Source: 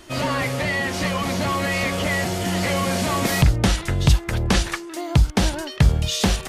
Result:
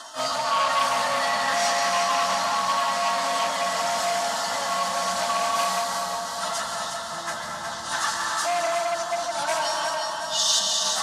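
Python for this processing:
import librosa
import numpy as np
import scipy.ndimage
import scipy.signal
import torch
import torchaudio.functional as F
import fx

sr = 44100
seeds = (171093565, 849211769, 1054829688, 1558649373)

y = fx.octave_divider(x, sr, octaves=1, level_db=-4.0)
y = y + 0.37 * np.pad(y, (int(4.5 * sr / 1000.0), 0))[:len(y)]
y = fx.over_compress(y, sr, threshold_db=-26.0, ratio=-1.0)
y = fx.stretch_vocoder_free(y, sr, factor=1.7)
y = fx.bandpass_edges(y, sr, low_hz=630.0, high_hz=7400.0)
y = fx.fixed_phaser(y, sr, hz=970.0, stages=4)
y = fx.echo_feedback(y, sr, ms=363, feedback_pct=57, wet_db=-6.0)
y = fx.rev_plate(y, sr, seeds[0], rt60_s=2.2, hf_ratio=0.65, predelay_ms=115, drr_db=0.5)
y = fx.transformer_sat(y, sr, knee_hz=2400.0)
y = y * 10.0 ** (8.0 / 20.0)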